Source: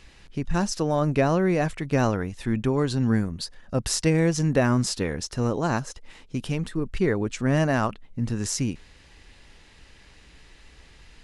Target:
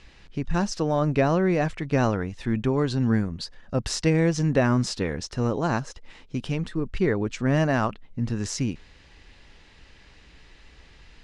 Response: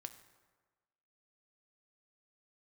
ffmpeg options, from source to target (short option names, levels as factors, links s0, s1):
-af "lowpass=6000"